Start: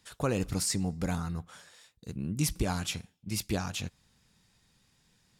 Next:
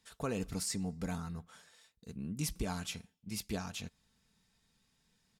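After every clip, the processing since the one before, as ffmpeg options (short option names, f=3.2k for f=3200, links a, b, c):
-af "aecho=1:1:4.5:0.36,volume=-7dB"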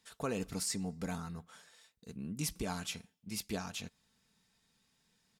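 -af "lowshelf=f=96:g=-10,volume=1dB"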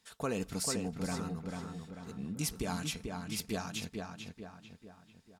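-filter_complex "[0:a]asplit=2[a][b];[b]adelay=442,lowpass=f=3k:p=1,volume=-4dB,asplit=2[c][d];[d]adelay=442,lowpass=f=3k:p=1,volume=0.48,asplit=2[e][f];[f]adelay=442,lowpass=f=3k:p=1,volume=0.48,asplit=2[g][h];[h]adelay=442,lowpass=f=3k:p=1,volume=0.48,asplit=2[i][j];[j]adelay=442,lowpass=f=3k:p=1,volume=0.48,asplit=2[k][l];[l]adelay=442,lowpass=f=3k:p=1,volume=0.48[m];[a][c][e][g][i][k][m]amix=inputs=7:normalize=0,volume=1.5dB"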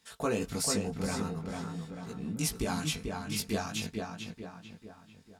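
-af "flanger=delay=17.5:depth=2.5:speed=0.45,volume=7dB"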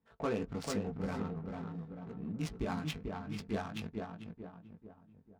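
-af "adynamicsmooth=sensitivity=5.5:basefreq=750,volume=-3.5dB"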